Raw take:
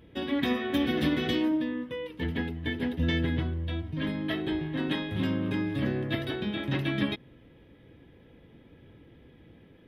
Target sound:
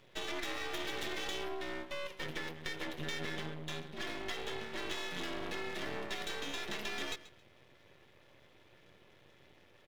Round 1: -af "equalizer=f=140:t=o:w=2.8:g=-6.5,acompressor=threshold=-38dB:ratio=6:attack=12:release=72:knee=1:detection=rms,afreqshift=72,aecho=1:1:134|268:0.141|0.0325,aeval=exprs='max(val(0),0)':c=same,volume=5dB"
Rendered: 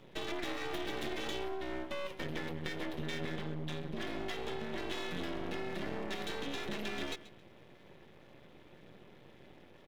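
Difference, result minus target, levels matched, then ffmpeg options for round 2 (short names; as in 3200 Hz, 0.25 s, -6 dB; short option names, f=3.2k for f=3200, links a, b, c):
125 Hz band +4.5 dB
-af "equalizer=f=140:t=o:w=2.8:g=-18.5,acompressor=threshold=-38dB:ratio=6:attack=12:release=72:knee=1:detection=rms,afreqshift=72,aecho=1:1:134|268:0.141|0.0325,aeval=exprs='max(val(0),0)':c=same,volume=5dB"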